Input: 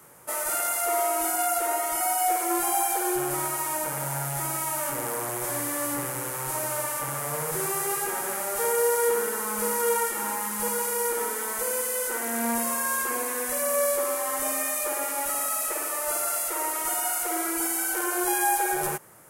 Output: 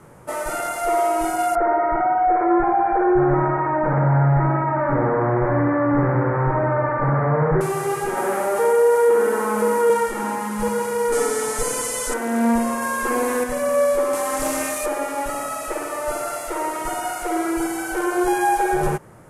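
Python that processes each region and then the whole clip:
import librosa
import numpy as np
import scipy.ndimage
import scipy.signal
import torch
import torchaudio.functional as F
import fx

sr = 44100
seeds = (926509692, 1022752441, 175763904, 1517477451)

y = fx.chain(x, sr, fx.steep_lowpass(hz=2000.0, slope=48),
    fx.env_flatten(amount_pct=50), at=(1.55, 7.61))
y = fx.chain(y, sr, fx.highpass(hz=260.0, slope=12),
    fx.peak_eq(hz=4600.0, db=-5.5, octaves=2.0),
    fx.env_flatten(amount_pct=50), at=(8.17, 9.9))
y = fx.chain(y, sr, fx.lowpass(hz=8800.0, slope=12),
    fx.bass_treble(bass_db=4, treble_db=13),
    fx.comb(ms=6.9, depth=0.68), at=(11.12, 12.14))
y = fx.chain(y, sr, fx.high_shelf(hz=8300.0, db=4.0),
    fx.env_flatten(amount_pct=100), at=(12.82, 13.44))
y = fx.chain(y, sr, fx.high_shelf(hz=4000.0, db=10.0),
    fx.doppler_dist(depth_ms=0.15), at=(14.13, 14.86))
y = scipy.signal.sosfilt(scipy.signal.bessel(8, 9900.0, 'lowpass', norm='mag', fs=sr, output='sos'), y)
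y = fx.tilt_eq(y, sr, slope=-3.0)
y = y * 10.0 ** (5.5 / 20.0)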